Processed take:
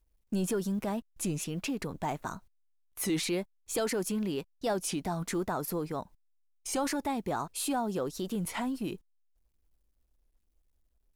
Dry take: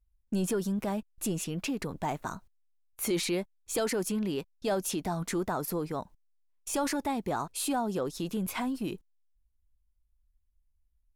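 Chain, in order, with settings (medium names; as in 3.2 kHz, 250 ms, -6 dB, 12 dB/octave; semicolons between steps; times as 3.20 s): companded quantiser 8-bit; warped record 33 1/3 rpm, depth 160 cents; trim -1 dB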